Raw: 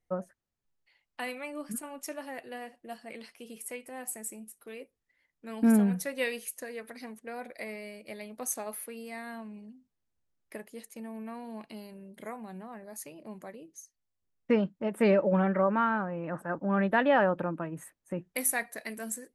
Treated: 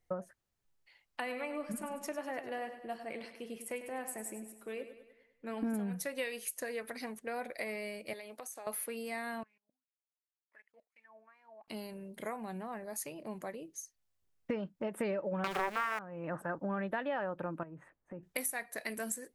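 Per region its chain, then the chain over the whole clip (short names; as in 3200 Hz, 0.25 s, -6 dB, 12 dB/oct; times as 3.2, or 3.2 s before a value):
1.2–5.74 high shelf 3400 Hz -10 dB + feedback echo 0.1 s, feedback 52%, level -11 dB
8.13–8.67 HPF 350 Hz + compressor 12:1, threshold -45 dBFS
9.43–11.68 block floating point 5-bit + level quantiser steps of 23 dB + wah 2.7 Hz 590–2300 Hz, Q 7.9
15.44–15.99 switching spikes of -25 dBFS + bell 1200 Hz +13.5 dB 2.6 oct + Doppler distortion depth 0.85 ms
17.63–18.23 LPF 1600 Hz + compressor 2.5:1, threshold -50 dBFS
whole clip: bell 230 Hz -3.5 dB 0.96 oct; compressor 5:1, threshold -38 dBFS; gain +3.5 dB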